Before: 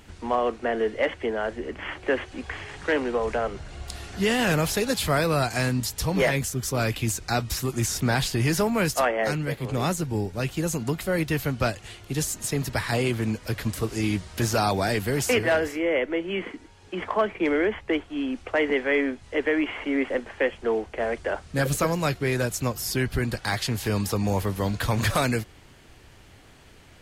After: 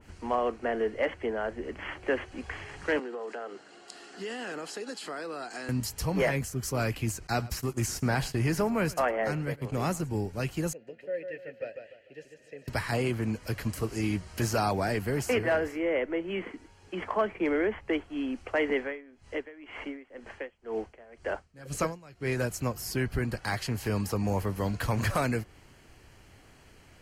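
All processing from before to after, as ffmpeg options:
ffmpeg -i in.wav -filter_complex "[0:a]asettb=1/sr,asplit=3[link_01][link_02][link_03];[link_01]atrim=end=2.994[link_04];[link_02]atrim=start=2.99:end=5.69,asetpts=PTS-STARTPTS,afade=type=in:duration=0.004:curve=qsin,afade=type=out:start_time=2.696:duration=0.004:curve=qsin,highpass=frequency=270:width=0.5412,highpass=frequency=270:width=1.3066,equalizer=frequency=590:width_type=q:width=4:gain=-6,equalizer=frequency=1000:width_type=q:width=4:gain=-5,equalizer=frequency=2300:width_type=q:width=4:gain=-8,equalizer=frequency=6000:width_type=q:width=4:gain=-6,lowpass=frequency=8300:width=0.5412,lowpass=frequency=8300:width=1.3066,acompressor=threshold=-31dB:ratio=3:attack=3.2:release=140:knee=1:detection=peak[link_05];[link_03]atrim=start=5.686[link_06];[link_04][link_05]acrossfade=duration=0.004:curve1=hsin:curve2=qsin[link_07];[link_07][link_06]acrossfade=duration=0.004:curve1=qsin:curve2=hsin,asettb=1/sr,asplit=3[link_08][link_09][link_10];[link_08]atrim=end=7.274[link_11];[link_09]atrim=start=7.27:end=10.09,asetpts=PTS-STARTPTS,afade=type=in:duration=0.004:curve=qsin,afade=type=out:start_time=2.816:duration=0.004:curve=qsin,agate=range=-18dB:threshold=-33dB:ratio=16:release=100:detection=peak,aecho=1:1:108:0.1,atrim=end_sample=124362[link_12];[link_10]atrim=start=10.086[link_13];[link_11][link_12]acrossfade=duration=0.004:curve1=hsin:curve2=qsin[link_14];[link_14][link_13]acrossfade=duration=0.004:curve1=qsin:curve2=hsin,asettb=1/sr,asplit=3[link_15][link_16][link_17];[link_15]atrim=end=10.734[link_18];[link_16]atrim=start=10.73:end=12.68,asetpts=PTS-STARTPTS,afade=type=in:duration=0.004:curve=qsin,afade=type=out:start_time=1.946:duration=0.004:curve=qsin,asplit=3[link_19][link_20][link_21];[link_19]bandpass=frequency=530:width_type=q:width=8,volume=0dB[link_22];[link_20]bandpass=frequency=1840:width_type=q:width=8,volume=-6dB[link_23];[link_21]bandpass=frequency=2480:width_type=q:width=8,volume=-9dB[link_24];[link_22][link_23][link_24]amix=inputs=3:normalize=0,highshelf=frequency=5500:gain=-9,aecho=1:1:147|294|441|588:0.447|0.152|0.0516|0.0176,atrim=end_sample=85995[link_25];[link_17]atrim=start=12.676[link_26];[link_18][link_25]acrossfade=duration=0.004:curve1=hsin:curve2=qsin[link_27];[link_27][link_26]acrossfade=duration=0.004:curve1=qsin:curve2=hsin,asettb=1/sr,asplit=3[link_28][link_29][link_30];[link_28]atrim=end=18.814[link_31];[link_29]atrim=start=18.81:end=22.37,asetpts=PTS-STARTPTS,afade=type=in:duration=0.004:curve=qsin,afade=type=out:start_time=3.556:duration=0.004:curve=qsin,lowpass=10000,aeval=exprs='val(0)*pow(10,-23*(0.5-0.5*cos(2*PI*2*n/s))/20)':channel_layout=same[link_32];[link_30]atrim=start=22.366[link_33];[link_31][link_32]acrossfade=duration=0.004:curve1=hsin:curve2=qsin[link_34];[link_34][link_33]acrossfade=duration=0.004:curve1=qsin:curve2=hsin,bandreject=frequency=3600:width=5.6,adynamicequalizer=threshold=0.01:dfrequency=2400:dqfactor=0.7:tfrequency=2400:tqfactor=0.7:attack=5:release=100:ratio=0.375:range=3.5:mode=cutabove:tftype=highshelf,volume=-4dB" out.wav

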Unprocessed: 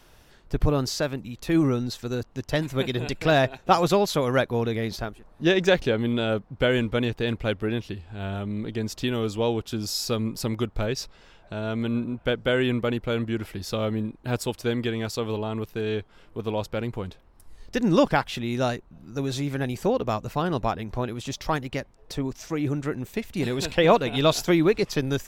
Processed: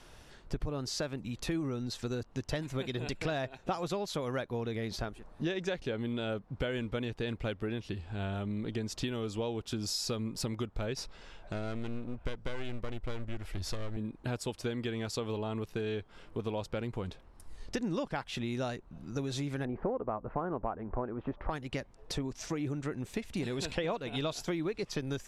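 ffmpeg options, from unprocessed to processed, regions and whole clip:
ffmpeg -i in.wav -filter_complex "[0:a]asettb=1/sr,asplit=3[link_01][link_02][link_03];[link_01]atrim=end=10.974[link_04];[link_02]atrim=start=10.97:end=13.97,asetpts=PTS-STARTPTS,afade=type=in:duration=0.004:curve=qsin,afade=type=out:start_time=2.996:duration=0.004:curve=qsin,aeval=exprs='clip(val(0),-1,0.0168)':channel_layout=same,asubboost=boost=7:cutoff=74[link_05];[link_03]atrim=start=13.966[link_06];[link_04][link_05]acrossfade=duration=0.004:curve1=hsin:curve2=qsin[link_07];[link_07][link_06]acrossfade=duration=0.004:curve1=qsin:curve2=hsin,asettb=1/sr,asplit=3[link_08][link_09][link_10];[link_08]atrim=end=19.654[link_11];[link_09]atrim=start=19.65:end=21.5,asetpts=PTS-STARTPTS,afade=type=in:duration=0.004:curve=qsin,afade=type=out:start_time=1.846:duration=0.004:curve=qsin,lowpass=frequency=1400:width=0.5412,lowpass=frequency=1400:width=1.3066,equalizer=frequency=120:width_type=o:width=1.6:gain=-8.5,acontrast=67[link_12];[link_10]atrim=start=21.496[link_13];[link_11][link_12]acrossfade=duration=0.004:curve1=hsin:curve2=qsin[link_14];[link_14][link_13]acrossfade=duration=0.004:curve1=qsin:curve2=hsin,lowpass=frequency=11000:width=0.5412,lowpass=frequency=11000:width=1.3066,acompressor=threshold=-32dB:ratio=6" out.wav

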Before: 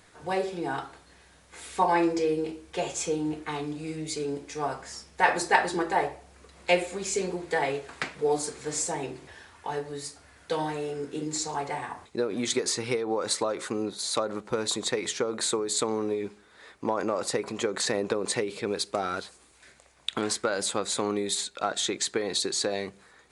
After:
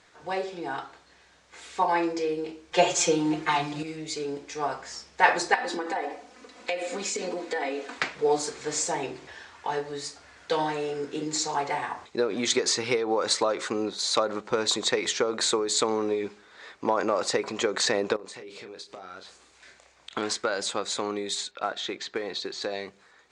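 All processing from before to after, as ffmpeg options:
ffmpeg -i in.wav -filter_complex "[0:a]asettb=1/sr,asplit=3[link_01][link_02][link_03];[link_01]atrim=end=2.724[link_04];[link_02]atrim=start=2.72:end=3.83,asetpts=PTS-STARTPTS,afade=type=in:duration=0.004:curve=qsin,afade=type=out:start_time=1.106:duration=0.004:curve=qsin,bandreject=frequency=50:width_type=h:width=6,bandreject=frequency=100:width_type=h:width=6,bandreject=frequency=150:width_type=h:width=6,bandreject=frequency=200:width_type=h:width=6,bandreject=frequency=250:width_type=h:width=6,bandreject=frequency=300:width_type=h:width=6,bandreject=frequency=350:width_type=h:width=6,bandreject=frequency=400:width_type=h:width=6,acontrast=50,aecho=1:1:5.7:0.9,atrim=end_sample=48951[link_05];[link_03]atrim=start=3.826[link_06];[link_04][link_05]acrossfade=duration=0.004:curve1=hsin:curve2=qsin[link_07];[link_07][link_06]acrossfade=duration=0.004:curve1=qsin:curve2=hsin,asettb=1/sr,asplit=3[link_08][link_09][link_10];[link_08]atrim=end=5.544[link_11];[link_09]atrim=start=5.54:end=7.98,asetpts=PTS-STARTPTS,afade=type=in:duration=0.004:curve=qsin,afade=type=out:start_time=2.436:duration=0.004:curve=qsin,lowshelf=frequency=180:width_type=q:width=3:gain=-11,aecho=1:1:4:0.67,atrim=end_sample=107604,acompressor=threshold=-28dB:ratio=8:attack=3.2:release=140:knee=1:detection=peak[link_12];[link_10]atrim=start=7.976[link_13];[link_11][link_12]acrossfade=duration=0.004:curve1=hsin:curve2=qsin[link_14];[link_14][link_13]acrossfade=duration=0.004:curve1=qsin:curve2=hsin,asettb=1/sr,asplit=3[link_15][link_16][link_17];[link_15]atrim=end=18.164[link_18];[link_16]atrim=start=18.16:end=20.11,asetpts=PTS-STARTPTS,afade=type=in:duration=0.004:curve=qsin,afade=type=out:start_time=1.946:duration=0.004:curve=qsin,acompressor=threshold=-44dB:ratio=4:attack=3.2:release=140:knee=1:detection=peak,asplit=2[link_19][link_20];[link_20]adelay=32,volume=-7.5dB[link_21];[link_19][link_21]amix=inputs=2:normalize=0,atrim=end_sample=85995[link_22];[link_17]atrim=start=20.106[link_23];[link_18][link_22]acrossfade=duration=0.004:curve1=hsin:curve2=qsin[link_24];[link_24][link_23]acrossfade=duration=0.004:curve1=qsin:curve2=hsin,asettb=1/sr,asplit=3[link_25][link_26][link_27];[link_25]atrim=end=21.514[link_28];[link_26]atrim=start=21.51:end=22.62,asetpts=PTS-STARTPTS,afade=type=in:duration=0.004:curve=qsin,afade=type=out:start_time=1.106:duration=0.004:curve=qsin,lowpass=3600,acrusher=bits=7:mode=log:mix=0:aa=0.000001[link_29];[link_27]atrim=start=22.616[link_30];[link_28][link_29]acrossfade=duration=0.004:curve1=hsin:curve2=qsin[link_31];[link_31][link_30]acrossfade=duration=0.004:curve1=qsin:curve2=hsin,lowpass=frequency=7200:width=0.5412,lowpass=frequency=7200:width=1.3066,lowshelf=frequency=260:gain=-9.5,dynaudnorm=framelen=690:gausssize=13:maxgain=5dB" out.wav

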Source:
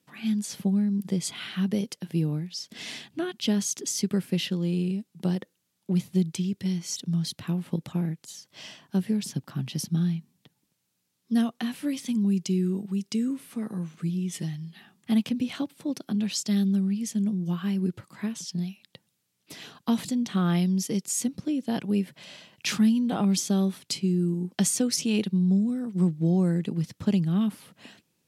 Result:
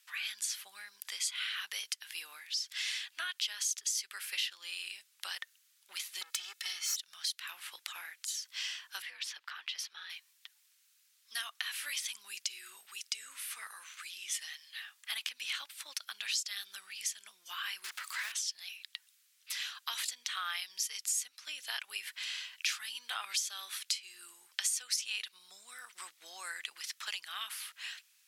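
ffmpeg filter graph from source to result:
ffmpeg -i in.wav -filter_complex "[0:a]asettb=1/sr,asplit=3[link_01][link_02][link_03];[link_01]atrim=end=6.214[link_04];[link_02]atrim=start=6.21:end=6.96,asetpts=PTS-STARTPTS,afade=type=in:duration=0.004:curve=qsin,afade=type=out:start_time=0.746:duration=0.004:curve=qsin,aeval=exprs='clip(val(0),-1,0.0119)':channel_layout=same,aecho=1:1:2.3:0.89,atrim=end_sample=33075[link_05];[link_03]atrim=start=6.956[link_06];[link_04][link_05]acrossfade=duration=0.004:curve1=hsin:curve2=qsin[link_07];[link_07][link_06]acrossfade=duration=0.004:curve1=qsin:curve2=hsin,asettb=1/sr,asplit=3[link_08][link_09][link_10];[link_08]atrim=end=9.024[link_11];[link_09]atrim=start=9.02:end=10.1,asetpts=PTS-STARTPTS,afade=type=in:duration=0.004:curve=qsin,afade=type=out:start_time=1.076:duration=0.004:curve=qsin,acrossover=split=300 4100:gain=0.126 1 0.141[link_12][link_13][link_14];[link_12][link_13][link_14]amix=inputs=3:normalize=0,acompressor=threshold=-39dB:ratio=2:attack=3.2:release=140:knee=1:detection=peak,afreqshift=63[link_15];[link_10]atrim=start=10.096[link_16];[link_11][link_15]acrossfade=duration=0.004:curve1=hsin:curve2=qsin[link_17];[link_17][link_16]acrossfade=duration=0.004:curve1=qsin:curve2=hsin,asettb=1/sr,asplit=3[link_18][link_19][link_20];[link_18]atrim=end=17.844[link_21];[link_19]atrim=start=17.84:end=18.32,asetpts=PTS-STARTPTS,afade=type=in:duration=0.004:curve=qsin,afade=type=out:start_time=0.476:duration=0.004:curve=qsin,aeval=exprs='val(0)+0.5*0.01*sgn(val(0))':channel_layout=same,acrusher=bits=6:mix=0:aa=0.5[link_22];[link_20]atrim=start=18.316[link_23];[link_21][link_22]acrossfade=duration=0.004:curve1=hsin:curve2=qsin[link_24];[link_24][link_23]acrossfade=duration=0.004:curve1=qsin:curve2=hsin,highpass=frequency=1400:width=0.5412,highpass=frequency=1400:width=1.3066,acompressor=threshold=-44dB:ratio=3,volume=8.5dB" out.wav

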